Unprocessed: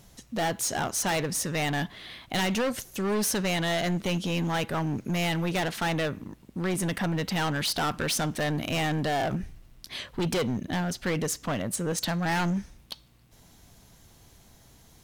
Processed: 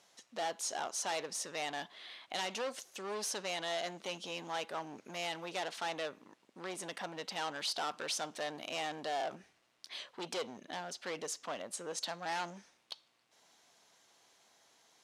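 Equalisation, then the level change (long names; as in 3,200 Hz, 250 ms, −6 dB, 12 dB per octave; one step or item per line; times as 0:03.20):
dynamic equaliser 1,800 Hz, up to −6 dB, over −45 dBFS, Q 1.1
band-pass filter 560–7,300 Hz
−5.5 dB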